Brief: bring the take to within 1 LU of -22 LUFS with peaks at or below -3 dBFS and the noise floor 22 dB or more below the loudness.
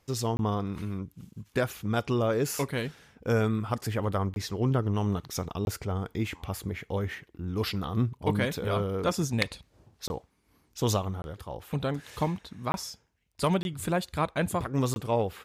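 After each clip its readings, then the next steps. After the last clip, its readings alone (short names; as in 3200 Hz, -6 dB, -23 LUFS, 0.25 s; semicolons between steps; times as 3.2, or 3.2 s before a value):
dropouts 8; longest dropout 21 ms; loudness -30.5 LUFS; peak -12.5 dBFS; loudness target -22.0 LUFS
-> interpolate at 0.37/4.34/5.65/10.08/11.22/12.72/13.63/14.94, 21 ms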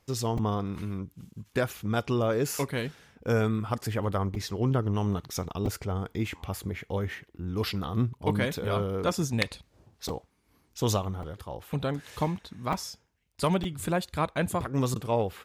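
dropouts 0; loudness -30.5 LUFS; peak -12.5 dBFS; loudness target -22.0 LUFS
-> gain +8.5 dB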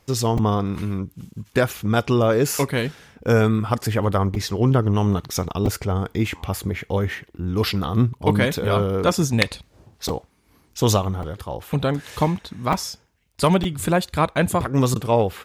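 loudness -22.0 LUFS; peak -4.0 dBFS; noise floor -60 dBFS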